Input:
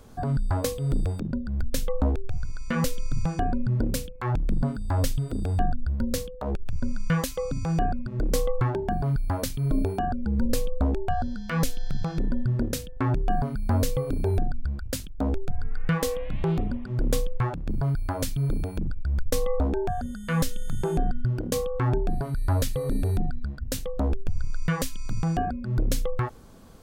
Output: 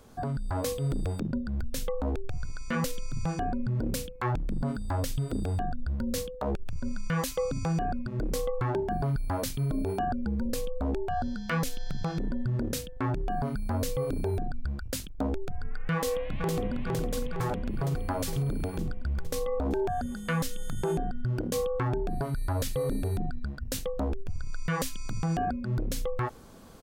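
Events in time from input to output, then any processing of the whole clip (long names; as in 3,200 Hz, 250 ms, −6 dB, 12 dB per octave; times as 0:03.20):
0:15.94–0:16.86: delay throw 460 ms, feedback 65%, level −3 dB
whole clip: brickwall limiter −20.5 dBFS; automatic gain control gain up to 3.5 dB; low-shelf EQ 150 Hz −6 dB; level −2 dB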